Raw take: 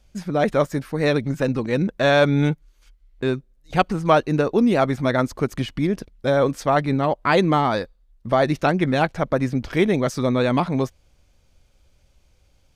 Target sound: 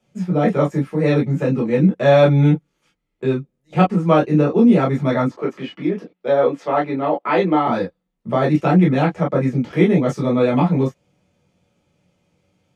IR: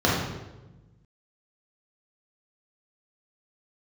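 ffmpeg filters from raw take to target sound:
-filter_complex "[0:a]asettb=1/sr,asplit=3[link_01][link_02][link_03];[link_01]atrim=end=5.284[link_04];[link_02]atrim=start=5.28:end=7.67,asetpts=PTS-STARTPTS,afade=type=in:duration=0.004:curve=qsin,afade=type=out:start_time=2.386:duration=0.004:curve=qsin,acrossover=split=250 5000:gain=0.1 1 0.2[link_05][link_06][link_07];[link_05][link_06][link_07]amix=inputs=3:normalize=0[link_08];[link_03]atrim=start=7.666[link_09];[link_04][link_08]acrossfade=duration=0.004:curve1=hsin:curve2=qsin[link_10];[link_10][link_09]acrossfade=duration=0.004:curve1=qsin:curve2=hsin[link_11];[1:a]atrim=start_sample=2205,atrim=end_sample=3969,asetrate=79380,aresample=44100[link_12];[link_11][link_12]afir=irnorm=-1:irlink=0,volume=-14dB"

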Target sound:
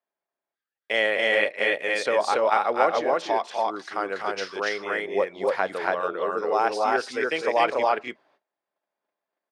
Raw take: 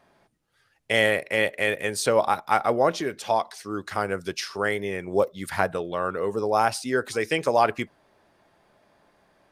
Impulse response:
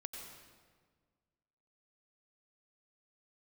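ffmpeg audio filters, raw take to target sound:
-af "agate=range=-26dB:threshold=-57dB:ratio=16:detection=peak,highpass=360,lowpass=4700,aecho=1:1:250.7|282.8:0.398|0.891,volume=-1.5dB"

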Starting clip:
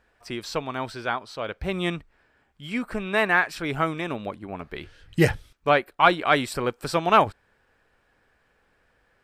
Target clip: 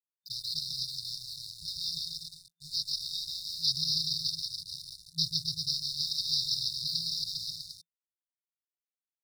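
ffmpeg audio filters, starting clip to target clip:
ffmpeg -i in.wav -filter_complex "[0:a]equalizer=frequency=900:width_type=o:width=1.1:gain=-7,aecho=1:1:140|266|379.4|481.5|573.3:0.631|0.398|0.251|0.158|0.1,adynamicequalizer=threshold=0.0141:dfrequency=1900:dqfactor=1.8:tfrequency=1900:tqfactor=1.8:attack=5:release=100:ratio=0.375:range=2.5:mode=cutabove:tftype=bell,acompressor=threshold=-22dB:ratio=6,asplit=3[link_01][link_02][link_03];[link_01]bandpass=frequency=300:width_type=q:width=8,volume=0dB[link_04];[link_02]bandpass=frequency=870:width_type=q:width=8,volume=-6dB[link_05];[link_03]bandpass=frequency=2240:width_type=q:width=8,volume=-9dB[link_06];[link_04][link_05][link_06]amix=inputs=3:normalize=0,aresample=11025,acrusher=bits=4:mode=log:mix=0:aa=0.000001,aresample=44100,aexciter=amount=9.5:drive=9.1:freq=3800,aeval=exprs='sgn(val(0))*max(abs(val(0))-0.00266,0)':channel_layout=same,afftfilt=real='re*(1-between(b*sr/4096,170,3600))':imag='im*(1-between(b*sr/4096,170,3600))':win_size=4096:overlap=0.75,volume=9dB" out.wav

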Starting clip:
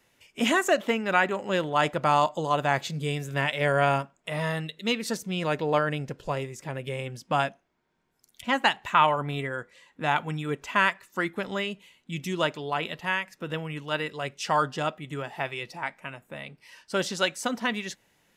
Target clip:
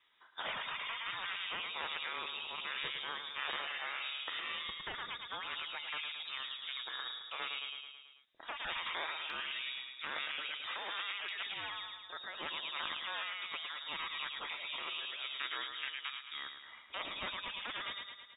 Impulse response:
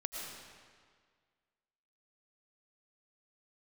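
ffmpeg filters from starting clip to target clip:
-af "lowshelf=frequency=160:gain=-8,aecho=1:1:109|218|327|436|545|654|763:0.376|0.222|0.131|0.0772|0.0455|0.0269|0.0159,lowpass=frequency=3300:width_type=q:width=0.5098,lowpass=frequency=3300:width_type=q:width=0.6013,lowpass=frequency=3300:width_type=q:width=0.9,lowpass=frequency=3300:width_type=q:width=2.563,afreqshift=-3900,asetnsamples=nb_out_samples=441:pad=0,asendcmd='9.3 highshelf g 11.5;11.29 highshelf g 4.5',highshelf=frequency=3000:gain=3.5,afftfilt=real='re*lt(hypot(re,im),0.112)':imag='im*lt(hypot(re,im),0.112)':win_size=1024:overlap=0.75,volume=-5.5dB"

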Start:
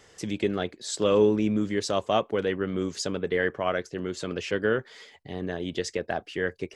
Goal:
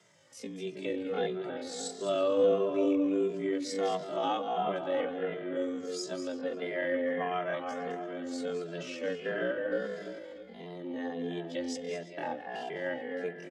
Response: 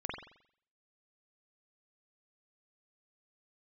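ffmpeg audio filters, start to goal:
-filter_complex "[0:a]asplit=2[link_01][link_02];[link_02]adelay=164,lowpass=frequency=890:poles=1,volume=-3.5dB,asplit=2[link_03][link_04];[link_04]adelay=164,lowpass=frequency=890:poles=1,volume=0.38,asplit=2[link_05][link_06];[link_06]adelay=164,lowpass=frequency=890:poles=1,volume=0.38,asplit=2[link_07][link_08];[link_08]adelay=164,lowpass=frequency=890:poles=1,volume=0.38,asplit=2[link_09][link_10];[link_10]adelay=164,lowpass=frequency=890:poles=1,volume=0.38[link_11];[link_01][link_03][link_05][link_07][link_09][link_11]amix=inputs=6:normalize=0,asplit=2[link_12][link_13];[1:a]atrim=start_sample=2205,adelay=103[link_14];[link_13][link_14]afir=irnorm=-1:irlink=0,volume=-7dB[link_15];[link_12][link_15]amix=inputs=2:normalize=0,afreqshift=77,atempo=0.5,asplit=2[link_16][link_17];[link_17]adelay=2.5,afreqshift=-1.5[link_18];[link_16][link_18]amix=inputs=2:normalize=1,volume=-5dB"

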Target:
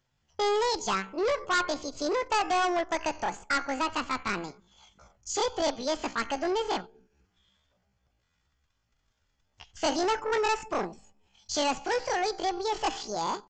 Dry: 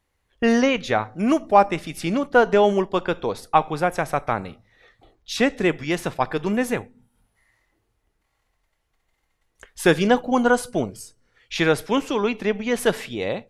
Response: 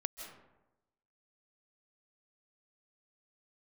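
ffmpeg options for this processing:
-af "bandreject=frequency=2100:width=7.6,asetrate=78577,aresample=44100,atempo=0.561231,aresample=16000,asoftclip=type=tanh:threshold=-20.5dB,aresample=44100,crystalizer=i=0.5:c=0,volume=-2.5dB"

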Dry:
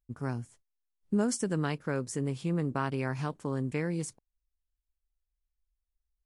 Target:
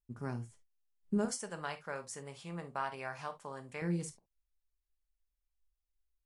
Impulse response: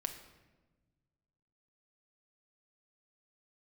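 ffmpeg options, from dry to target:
-filter_complex "[0:a]asettb=1/sr,asplit=3[link_01][link_02][link_03];[link_01]atrim=end=1.254[link_04];[link_02]atrim=start=1.25:end=3.82,asetpts=PTS-STARTPTS,afade=type=in:duration=0.004:curve=qsin,afade=type=out:start_time=2.566:duration=0.004:curve=qsin,lowshelf=frequency=470:width_type=q:width=1.5:gain=-11.5[link_05];[link_03]atrim=start=3.816[link_06];[link_04][link_05]acrossfade=duration=0.004:curve1=hsin:curve2=qsin[link_07];[link_07][link_06]acrossfade=duration=0.004:curve1=qsin:curve2=hsin[link_08];[1:a]atrim=start_sample=2205,atrim=end_sample=3969,asetrate=52920,aresample=44100[link_09];[link_08][link_09]afir=irnorm=-1:irlink=0,volume=-2.5dB"

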